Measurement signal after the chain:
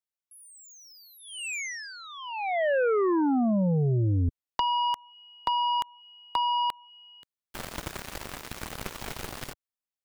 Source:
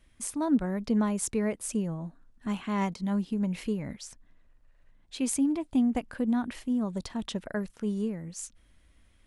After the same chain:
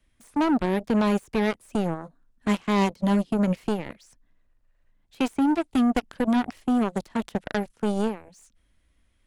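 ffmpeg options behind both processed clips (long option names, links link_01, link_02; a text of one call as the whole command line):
ffmpeg -i in.wav -filter_complex "[0:a]acrossover=split=2600[link_01][link_02];[link_02]acompressor=threshold=-44dB:ratio=4:attack=1:release=60[link_03];[link_01][link_03]amix=inputs=2:normalize=0,acrossover=split=100|750|2400[link_04][link_05][link_06][link_07];[link_05]alimiter=level_in=1.5dB:limit=-24dB:level=0:latency=1:release=79,volume=-1.5dB[link_08];[link_06]acompressor=threshold=-39dB:ratio=6[link_09];[link_04][link_08][link_09][link_07]amix=inputs=4:normalize=0,aeval=exprs='0.0944*(cos(1*acos(clip(val(0)/0.0944,-1,1)))-cos(1*PI/2))+0.0168*(cos(7*acos(clip(val(0)/0.0944,-1,1)))-cos(7*PI/2))':channel_layout=same,volume=7.5dB" out.wav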